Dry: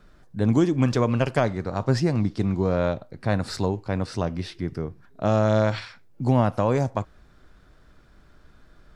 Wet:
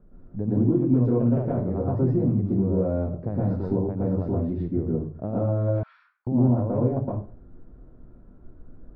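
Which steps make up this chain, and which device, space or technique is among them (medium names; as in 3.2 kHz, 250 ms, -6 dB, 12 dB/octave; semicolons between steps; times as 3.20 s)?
television next door (compression, threshold -25 dBFS, peak gain reduction 10 dB; low-pass 510 Hz 12 dB/octave; reverberation RT60 0.40 s, pre-delay 110 ms, DRR -5.5 dB); 5.83–6.27 s: elliptic high-pass 1.2 kHz, stop band 80 dB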